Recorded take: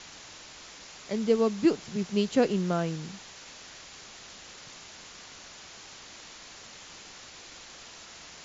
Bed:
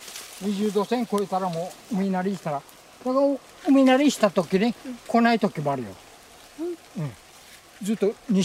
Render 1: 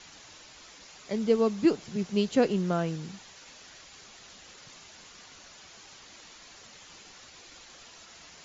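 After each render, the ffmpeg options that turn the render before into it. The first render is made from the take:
-af "afftdn=nr=6:nf=-48"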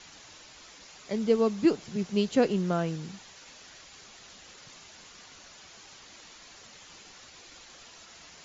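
-af anull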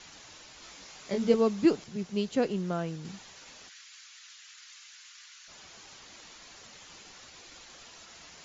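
-filter_complex "[0:a]asettb=1/sr,asplit=3[a][b][c];[a]atrim=end=0.604[d];[b]atrim=start=0.6:end=1.34,asetpts=PTS-STARTPTS,afade=t=in:d=0.004:c=qsin,afade=t=out:st=0.736:d=0.004:c=qsin,asplit=2[e][f];[f]adelay=21,volume=-3.5dB[g];[e][g]amix=inputs=2:normalize=0,atrim=end_sample=32634[h];[c]atrim=start=1.336[i];[d][h]acrossfade=d=0.004:c1=hsin:c2=qsin[j];[j][i]acrossfade=d=0.004:c1=qsin:c2=hsin,asplit=3[k][l][m];[k]afade=t=out:st=3.68:d=0.02[n];[l]highpass=f=1.4k:w=0.5412,highpass=f=1.4k:w=1.3066,afade=t=in:st=3.68:d=0.02,afade=t=out:st=5.47:d=0.02[o];[m]afade=t=in:st=5.47:d=0.02[p];[n][o][p]amix=inputs=3:normalize=0,asplit=3[q][r][s];[q]atrim=end=1.842[t];[r]atrim=start=1.838:end=3.052,asetpts=PTS-STARTPTS,volume=-4dB[u];[s]atrim=start=3.048[v];[t][u]acrossfade=d=0.004:c1=hsin:c2=hsin[w];[w][v]acrossfade=d=0.004:c1=hsin:c2=hsin"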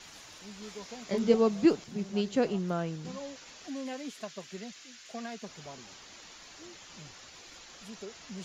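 -filter_complex "[1:a]volume=-21.5dB[a];[0:a][a]amix=inputs=2:normalize=0"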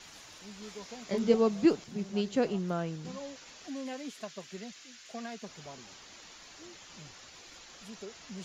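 -af "volume=-1dB"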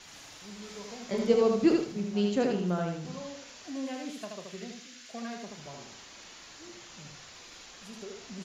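-filter_complex "[0:a]asplit=2[a][b];[b]adelay=34,volume=-11.5dB[c];[a][c]amix=inputs=2:normalize=0,asplit=2[d][e];[e]aecho=0:1:78|156|234|312:0.668|0.214|0.0684|0.0219[f];[d][f]amix=inputs=2:normalize=0"

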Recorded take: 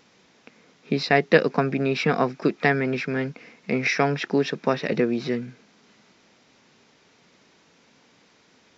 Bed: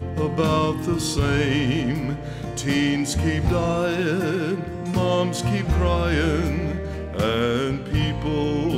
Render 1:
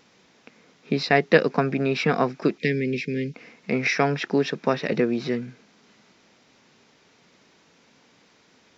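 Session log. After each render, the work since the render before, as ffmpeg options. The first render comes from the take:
-filter_complex "[0:a]asettb=1/sr,asplit=3[a][b][c];[a]atrim=end=2.584[d];[b]atrim=start=2.58:end=3.34,asetpts=PTS-STARTPTS,afade=t=in:d=0.004:c=qsin,afade=t=out:st=0.756:d=0.004:c=qsin,asuperstop=centerf=990:order=8:qfactor=0.64[e];[c]atrim=start=3.336[f];[d][e]acrossfade=d=0.004:c1=hsin:c2=qsin[g];[g][f]acrossfade=d=0.004:c1=qsin:c2=hsin"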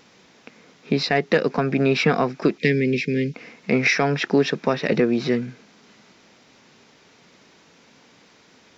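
-af "acontrast=21,alimiter=limit=-7.5dB:level=0:latency=1:release=207"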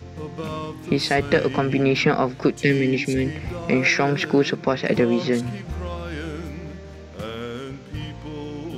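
-filter_complex "[1:a]volume=-10dB[a];[0:a][a]amix=inputs=2:normalize=0"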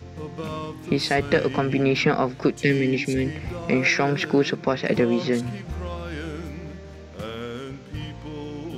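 -af "volume=-1.5dB"

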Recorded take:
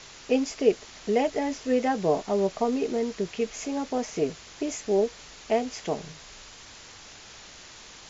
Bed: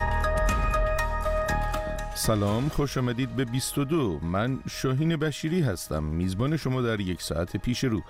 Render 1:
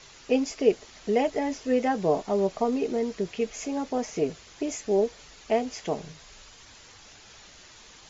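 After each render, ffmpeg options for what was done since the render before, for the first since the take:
-af "afftdn=nr=6:nf=-47"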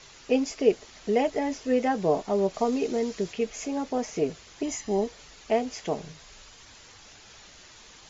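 -filter_complex "[0:a]asettb=1/sr,asplit=3[a][b][c];[a]atrim=end=2.544[d];[b]atrim=start=2.54:end=3.33,asetpts=PTS-STARTPTS,afade=t=in:d=0.004:c=qsin,afade=t=out:st=0.786:d=0.004:c=qsin,highshelf=f=3.7k:g=7[e];[c]atrim=start=3.326[f];[d][e]acrossfade=d=0.004:c1=hsin:c2=qsin[g];[g][f]acrossfade=d=0.004:c1=qsin:c2=hsin,asettb=1/sr,asplit=3[h][i][j];[h]atrim=end=4.634[k];[i]atrim=start=4.63:end=5.07,asetpts=PTS-STARTPTS,afade=t=in:d=0.004:c=qsin,afade=t=out:st=0.436:d=0.004:c=qsin,aecho=1:1:1:0.54,atrim=end_sample=19404[l];[j]atrim=start=5.066[m];[k][l]acrossfade=d=0.004:c1=hsin:c2=qsin[n];[n][m]acrossfade=d=0.004:c1=qsin:c2=hsin"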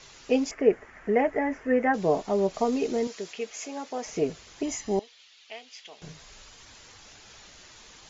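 -filter_complex "[0:a]asettb=1/sr,asplit=3[a][b][c];[a]atrim=end=0.514[d];[b]atrim=start=0.51:end=1.94,asetpts=PTS-STARTPTS,afade=t=in:d=0.004:c=qsin,afade=t=out:st=1.426:d=0.004:c=qsin,highshelf=f=2.7k:t=q:w=3:g=-13.5[e];[c]atrim=start=1.936[f];[d][e]acrossfade=d=0.004:c1=hsin:c2=qsin[g];[g][f]acrossfade=d=0.004:c1=qsin:c2=hsin,asettb=1/sr,asplit=3[h][i][j];[h]atrim=end=3.074[k];[i]atrim=start=3.07:end=4.06,asetpts=PTS-STARTPTS,afade=t=in:d=0.004:c=qsin,afade=t=out:st=0.986:d=0.004:c=qsin,highpass=f=710:p=1[l];[j]atrim=start=4.056[m];[k][l]acrossfade=d=0.004:c1=hsin:c2=qsin[n];[n][m]acrossfade=d=0.004:c1=qsin:c2=hsin,asettb=1/sr,asplit=3[o][p][q];[o]atrim=end=4.994[r];[p]atrim=start=4.99:end=6.02,asetpts=PTS-STARTPTS,afade=t=in:d=0.004:c=qsin,afade=t=out:st=1.026:d=0.004:c=qsin,bandpass=f=3.3k:t=q:w=1.9[s];[q]atrim=start=6.016[t];[r][s]acrossfade=d=0.004:c1=hsin:c2=qsin[u];[u][t]acrossfade=d=0.004:c1=qsin:c2=hsin"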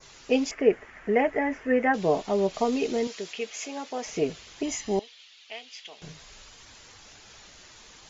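-af "adynamicequalizer=threshold=0.00398:dfrequency=3100:dqfactor=1.1:tfrequency=3100:tqfactor=1.1:attack=5:release=100:ratio=0.375:range=3:mode=boostabove:tftype=bell"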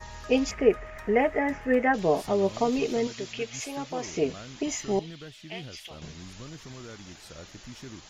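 -filter_complex "[1:a]volume=-17.5dB[a];[0:a][a]amix=inputs=2:normalize=0"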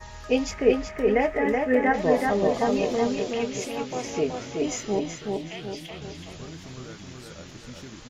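-filter_complex "[0:a]asplit=2[a][b];[b]adelay=24,volume=-12dB[c];[a][c]amix=inputs=2:normalize=0,asplit=2[d][e];[e]adelay=376,lowpass=f=3.8k:p=1,volume=-3dB,asplit=2[f][g];[g]adelay=376,lowpass=f=3.8k:p=1,volume=0.49,asplit=2[h][i];[i]adelay=376,lowpass=f=3.8k:p=1,volume=0.49,asplit=2[j][k];[k]adelay=376,lowpass=f=3.8k:p=1,volume=0.49,asplit=2[l][m];[m]adelay=376,lowpass=f=3.8k:p=1,volume=0.49,asplit=2[n][o];[o]adelay=376,lowpass=f=3.8k:p=1,volume=0.49[p];[f][h][j][l][n][p]amix=inputs=6:normalize=0[q];[d][q]amix=inputs=2:normalize=0"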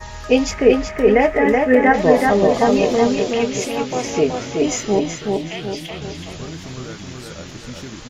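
-af "volume=8.5dB,alimiter=limit=-2dB:level=0:latency=1"

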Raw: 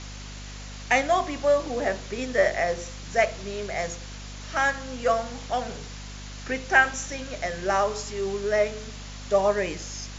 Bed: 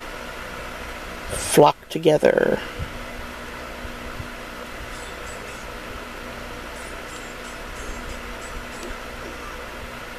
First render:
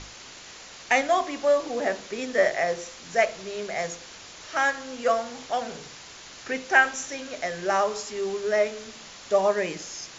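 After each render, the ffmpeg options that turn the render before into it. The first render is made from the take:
-af "bandreject=f=50:t=h:w=6,bandreject=f=100:t=h:w=6,bandreject=f=150:t=h:w=6,bandreject=f=200:t=h:w=6,bandreject=f=250:t=h:w=6,bandreject=f=300:t=h:w=6"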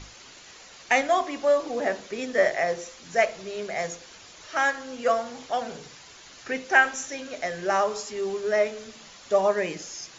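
-af "afftdn=nr=6:nf=-45"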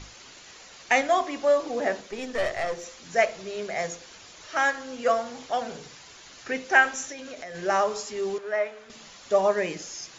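-filter_complex "[0:a]asettb=1/sr,asplit=3[a][b][c];[a]atrim=end=2.014[d];[b]atrim=start=2.01:end=2.84,asetpts=PTS-STARTPTS,afade=t=in:d=0.004:c=qsin,afade=t=out:st=0.826:d=0.004:c=qsin,aeval=exprs='(tanh(12.6*val(0)+0.5)-tanh(0.5))/12.6':c=same[e];[c]atrim=start=2.836[f];[d][e]acrossfade=d=0.004:c1=hsin:c2=qsin[g];[g][f]acrossfade=d=0.004:c1=qsin:c2=hsin,asplit=3[h][i][j];[h]afade=t=out:st=7.11:d=0.02[k];[i]acompressor=threshold=-35dB:ratio=6:attack=3.2:release=140:knee=1:detection=peak,afade=t=in:st=7.11:d=0.02,afade=t=out:st=7.54:d=0.02[l];[j]afade=t=in:st=7.54:d=0.02[m];[k][l][m]amix=inputs=3:normalize=0,asettb=1/sr,asplit=3[n][o][p];[n]atrim=end=8.384[q];[o]atrim=start=8.38:end=8.9,asetpts=PTS-STARTPTS,afade=t=in:d=0.004:c=qsin,afade=t=out:st=0.516:d=0.004:c=qsin,acrossover=split=590 2600:gain=0.224 1 0.2[r][s][t];[r][s][t]amix=inputs=3:normalize=0[u];[p]atrim=start=8.896[v];[q][u]acrossfade=d=0.004:c1=hsin:c2=qsin[w];[w][v]acrossfade=d=0.004:c1=qsin:c2=hsin"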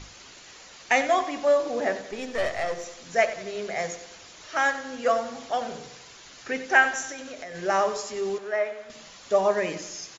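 -af "aecho=1:1:92|184|276|368|460:0.211|0.106|0.0528|0.0264|0.0132"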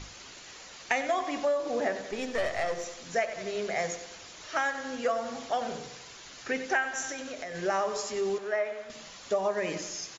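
-af "acompressor=threshold=-25dB:ratio=5"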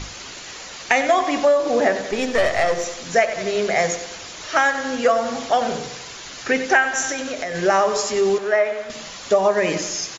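-af "volume=11.5dB,alimiter=limit=-1dB:level=0:latency=1"

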